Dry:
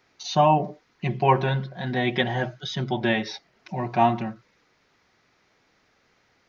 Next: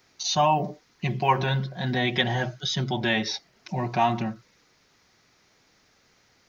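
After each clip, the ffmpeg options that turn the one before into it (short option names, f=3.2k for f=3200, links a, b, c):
-filter_complex "[0:a]acrossover=split=720[a][b];[a]alimiter=limit=-22dB:level=0:latency=1[c];[c][b]amix=inputs=2:normalize=0,bass=f=250:g=3,treble=f=4k:g=10"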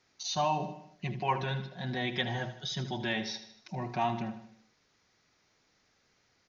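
-filter_complex "[0:a]aresample=16000,aresample=44100,asplit=2[a][b];[b]aecho=0:1:77|154|231|308|385:0.237|0.126|0.0666|0.0353|0.0187[c];[a][c]amix=inputs=2:normalize=0,volume=-8.5dB"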